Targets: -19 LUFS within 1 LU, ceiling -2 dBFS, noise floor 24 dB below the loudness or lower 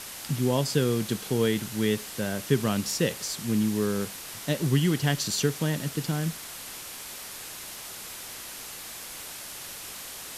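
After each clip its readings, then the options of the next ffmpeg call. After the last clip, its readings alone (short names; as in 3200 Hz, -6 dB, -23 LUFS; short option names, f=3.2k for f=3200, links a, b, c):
noise floor -41 dBFS; noise floor target -53 dBFS; loudness -29.0 LUFS; peak -9.5 dBFS; loudness target -19.0 LUFS
-> -af "afftdn=nr=12:nf=-41"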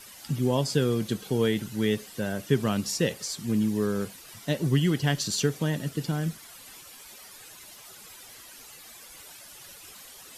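noise floor -48 dBFS; noise floor target -52 dBFS
-> -af "afftdn=nr=6:nf=-48"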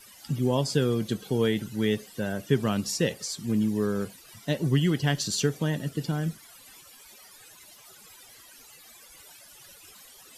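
noise floor -52 dBFS; loudness -27.5 LUFS; peak -9.5 dBFS; loudness target -19.0 LUFS
-> -af "volume=8.5dB,alimiter=limit=-2dB:level=0:latency=1"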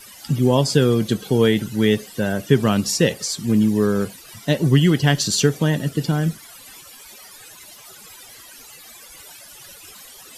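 loudness -19.0 LUFS; peak -2.0 dBFS; noise floor -43 dBFS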